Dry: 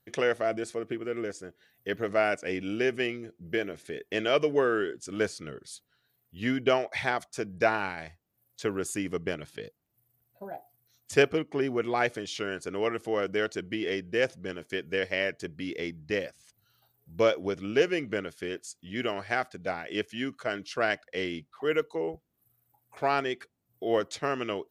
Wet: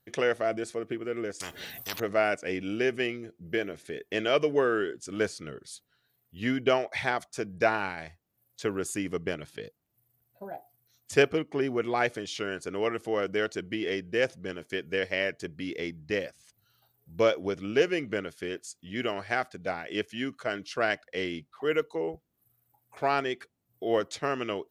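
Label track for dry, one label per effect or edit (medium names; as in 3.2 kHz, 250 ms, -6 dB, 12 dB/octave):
1.400000	2.000000	spectrum-flattening compressor 10:1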